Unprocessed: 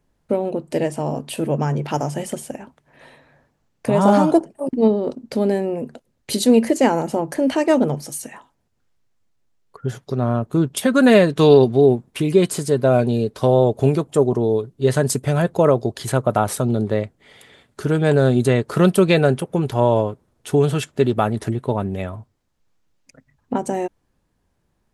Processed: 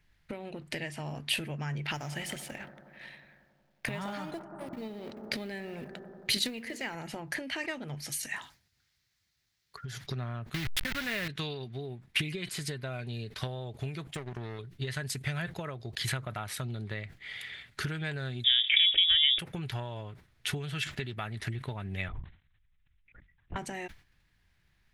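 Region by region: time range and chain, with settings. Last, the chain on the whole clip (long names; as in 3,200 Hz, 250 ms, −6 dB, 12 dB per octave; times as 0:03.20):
0:01.94–0:06.95: mu-law and A-law mismatch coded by A + bucket-brigade delay 91 ms, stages 1,024, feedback 80%, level −16 dB
0:08.23–0:10.04: high-pass filter 47 Hz + high shelf with overshoot 3,600 Hz +6 dB, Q 1.5 + downward compressor, threshold −33 dBFS
0:10.54–0:11.28: hold until the input has moved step −18.5 dBFS + level that may fall only so fast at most 34 dB per second
0:14.14–0:14.59: downward compressor 3 to 1, threshold −15 dBFS + power curve on the samples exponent 1.4
0:18.44–0:19.39: voice inversion scrambler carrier 3,600 Hz + phaser with its sweep stopped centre 410 Hz, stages 4 + envelope flattener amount 50%
0:22.08–0:23.56: low-shelf EQ 75 Hz +9 dB + linear-prediction vocoder at 8 kHz whisper + output level in coarse steps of 17 dB
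whole clip: downward compressor 10 to 1, threshold −27 dBFS; graphic EQ with 10 bands 250 Hz −9 dB, 500 Hz −11 dB, 1,000 Hz −6 dB, 2,000 Hz +10 dB, 4,000 Hz +5 dB, 8,000 Hz −6 dB; level that may fall only so fast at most 150 dB per second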